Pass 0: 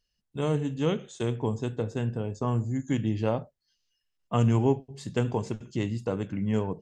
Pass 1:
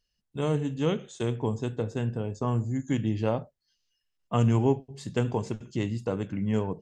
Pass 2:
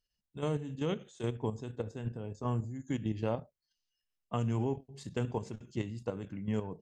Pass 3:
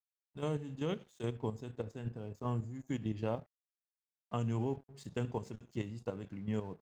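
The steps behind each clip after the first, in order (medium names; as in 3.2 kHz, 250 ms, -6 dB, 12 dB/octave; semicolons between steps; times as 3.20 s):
no audible change
level held to a coarse grid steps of 9 dB; trim -4 dB
crossover distortion -60 dBFS; trim -2.5 dB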